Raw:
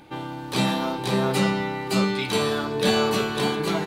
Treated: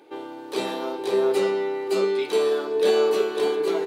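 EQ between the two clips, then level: resonant high-pass 400 Hz, resonance Q 4.9; -6.5 dB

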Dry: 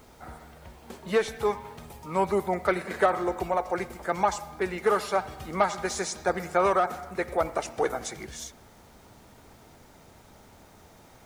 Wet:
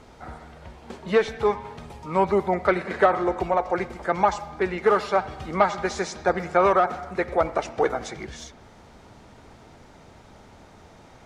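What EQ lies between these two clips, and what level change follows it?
dynamic bell 9.3 kHz, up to -5 dB, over -52 dBFS, Q 0.81; distance through air 74 m; +4.5 dB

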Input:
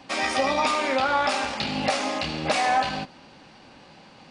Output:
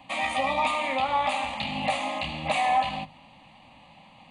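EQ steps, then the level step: hum notches 50/100/150 Hz; static phaser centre 1.5 kHz, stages 6; 0.0 dB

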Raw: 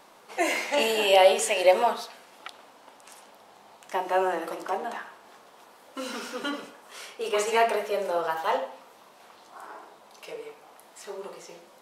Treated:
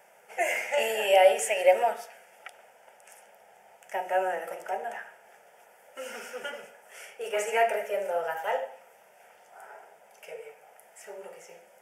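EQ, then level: high-pass 210 Hz 6 dB/octave; static phaser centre 1.1 kHz, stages 6; 0.0 dB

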